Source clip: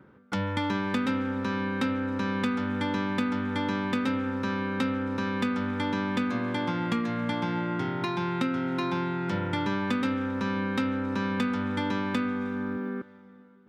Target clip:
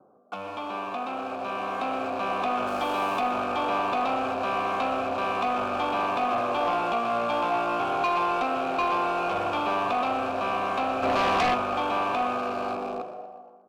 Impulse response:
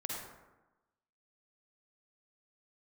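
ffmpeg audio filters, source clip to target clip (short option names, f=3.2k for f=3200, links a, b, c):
-filter_complex "[0:a]bandreject=f=2k:w=8.4,acrossover=split=590|1000[a][b][c];[c]acrusher=bits=6:mix=0:aa=0.000001[d];[a][b][d]amix=inputs=3:normalize=0,asettb=1/sr,asplit=3[e][f][g];[e]atrim=end=2.674[h];[f]atrim=start=2.67:end=3.2,asetpts=PTS-STARTPTS,afade=t=in:d=0.004:c=qsin,afade=t=out:st=0.526:d=0.004:c=qsin,aemphasis=mode=production:type=50kf[i];[g]atrim=start=3.196[j];[h][i]acrossfade=d=0.004:c1=hsin:c2=qsin[k];[k][j]acrossfade=d=0.004:c1=qsin:c2=hsin,asoftclip=type=tanh:threshold=-30dB,asubboost=boost=10.5:cutoff=50,asplit=6[l][m][n][o][p][q];[m]adelay=120,afreqshift=120,volume=-12.5dB[r];[n]adelay=240,afreqshift=240,volume=-18.3dB[s];[o]adelay=360,afreqshift=360,volume=-24.2dB[t];[p]adelay=480,afreqshift=480,volume=-30dB[u];[q]adelay=600,afreqshift=600,volume=-35.9dB[v];[l][r][s][t][u][v]amix=inputs=6:normalize=0,asplit=3[w][x][y];[w]afade=t=out:st=11.02:d=0.02[z];[x]acontrast=82,afade=t=in:st=11.02:d=0.02,afade=t=out:st=11.53:d=0.02[aa];[y]afade=t=in:st=11.53:d=0.02[ab];[z][aa][ab]amix=inputs=3:normalize=0,asplit=2[ac][ad];[1:a]atrim=start_sample=2205,adelay=68[ae];[ad][ae]afir=irnorm=-1:irlink=0,volume=-16dB[af];[ac][af]amix=inputs=2:normalize=0,dynaudnorm=f=510:g=7:m=8.5dB,asplit=3[ag][ah][ai];[ag]bandpass=f=730:t=q:w=8,volume=0dB[aj];[ah]bandpass=f=1.09k:t=q:w=8,volume=-6dB[ak];[ai]bandpass=f=2.44k:t=q:w=8,volume=-9dB[al];[aj][ak][al]amix=inputs=3:normalize=0,aeval=exprs='0.0891*sin(PI/2*2.82*val(0)/0.0891)':c=same,volume=2dB"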